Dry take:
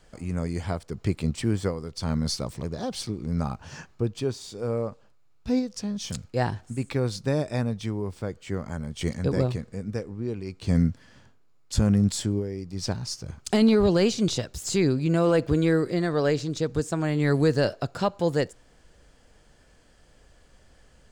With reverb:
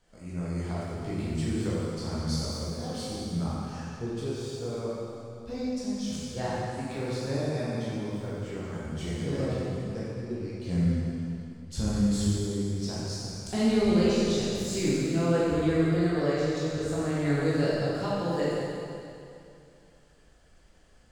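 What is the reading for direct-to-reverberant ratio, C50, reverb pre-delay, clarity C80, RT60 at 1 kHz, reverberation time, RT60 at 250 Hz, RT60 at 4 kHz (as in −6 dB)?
−9.0 dB, −4.0 dB, 7 ms, −2.0 dB, 2.6 s, 2.6 s, 2.6 s, 2.4 s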